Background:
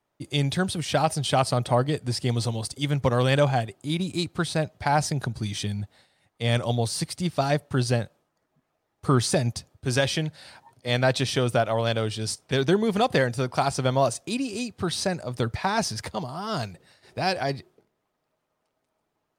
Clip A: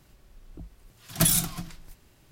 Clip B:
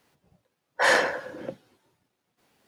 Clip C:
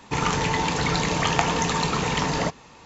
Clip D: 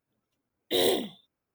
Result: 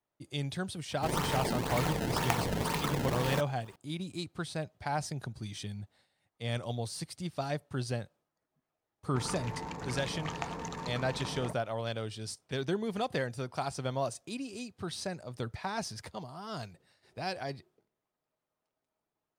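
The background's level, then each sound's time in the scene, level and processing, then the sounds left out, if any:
background -11 dB
0.91 s: add C -9 dB + decimation with a swept rate 22×, swing 160% 2 Hz
9.03 s: add C -15 dB + local Wiener filter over 15 samples
not used: A, B, D

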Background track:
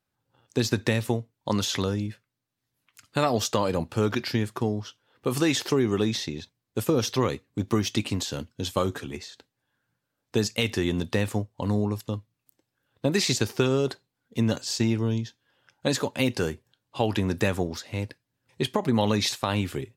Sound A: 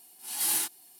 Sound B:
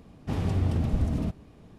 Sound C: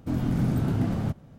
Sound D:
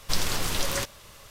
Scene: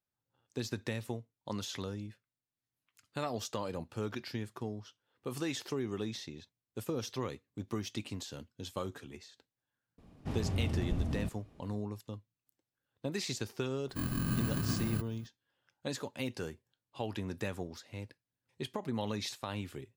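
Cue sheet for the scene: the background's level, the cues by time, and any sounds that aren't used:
background track -13 dB
9.98 s: add B -7.5 dB
13.89 s: add C -8.5 dB + bit-reversed sample order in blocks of 32 samples
not used: A, D

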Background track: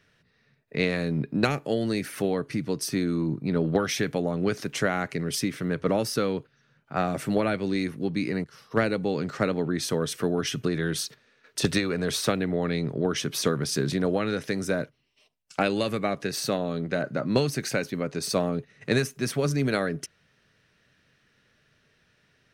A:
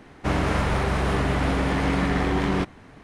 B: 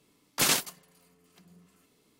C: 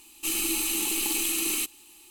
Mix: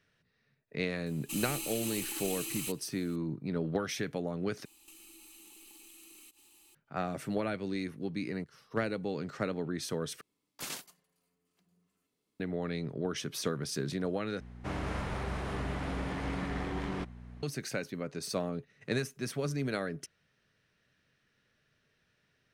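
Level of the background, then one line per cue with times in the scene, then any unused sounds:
background track -8.5 dB
1.06 s: add C -8 dB + peak limiter -20.5 dBFS
4.65 s: replace with C -9.5 dB + compression 12:1, threshold -42 dBFS
10.21 s: replace with B -16 dB
14.40 s: replace with A -13 dB + mains buzz 60 Hz, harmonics 4, -35 dBFS

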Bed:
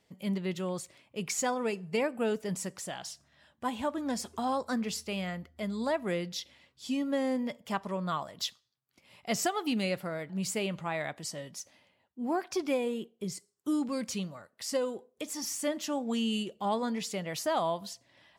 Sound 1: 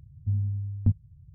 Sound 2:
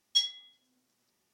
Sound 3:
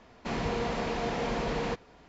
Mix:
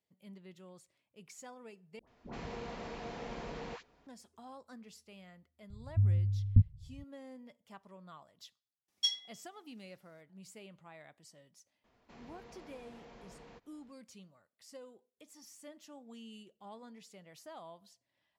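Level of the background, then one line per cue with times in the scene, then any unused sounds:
bed -20 dB
1.99 s: replace with 3 -12 dB + phase dispersion highs, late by 86 ms, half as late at 810 Hz
5.70 s: add 1 -14 dB + tilt EQ -4 dB/octave
8.88 s: add 2 -5 dB
11.84 s: add 3 -16 dB + compression 1.5:1, threshold -49 dBFS

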